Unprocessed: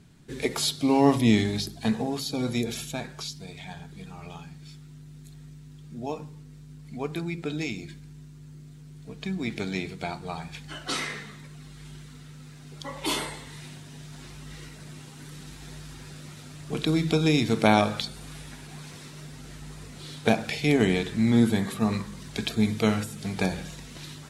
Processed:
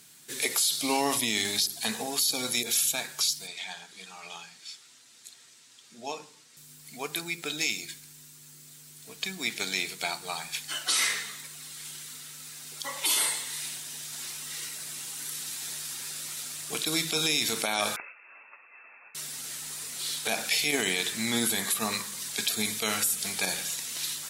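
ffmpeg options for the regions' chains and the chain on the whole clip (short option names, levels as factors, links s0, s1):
-filter_complex "[0:a]asettb=1/sr,asplit=3[s0][s1][s2];[s0]atrim=end=3.474[s3];[s1]atrim=start=3.47:end=6.57,asetpts=PTS-STARTPTS,afade=t=in:d=0.004:c=qsin,afade=t=out:st=3.096:d=0.004:c=qsin,highpass=120,lowpass=6500,bandreject=f=50:t=h:w=6,bandreject=f=100:t=h:w=6,bandreject=f=150:t=h:w=6,bandreject=f=200:t=h:w=6,bandreject=f=250:t=h:w=6,bandreject=f=300:t=h:w=6,bandreject=f=350:t=h:w=6,bandreject=f=400:t=h:w=6,bandreject=f=450:t=h:w=6[s4];[s2]atrim=start=6.566[s5];[s3][s4]acrossfade=d=0.004:c1=hsin:c2=qsin[s6];[s6][s5]acrossfade=d=0.004:c1=qsin:c2=hsin,asettb=1/sr,asplit=3[s7][s8][s9];[s7]atrim=end=17.964[s10];[s8]atrim=start=17.96:end=19.15,asetpts=PTS-STARTPTS,afade=t=in:d=0.004:c=qsin,afade=t=out:st=1.186:d=0.004:c=qsin,highpass=f=780:p=1,agate=range=0.0224:threshold=0.00631:ratio=3:release=100:detection=peak,lowpass=f=2400:t=q:w=0.5098,lowpass=f=2400:t=q:w=0.6013,lowpass=f=2400:t=q:w=0.9,lowpass=f=2400:t=q:w=2.563,afreqshift=-2800[s11];[s9]atrim=start=19.146[s12];[s10][s11]acrossfade=d=0.004:c1=hsin:c2=qsin[s13];[s13][s12]acrossfade=d=0.004:c1=qsin:c2=hsin,highpass=f=1200:p=1,aemphasis=mode=production:type=75fm,alimiter=limit=0.1:level=0:latency=1:release=32,volume=1.68"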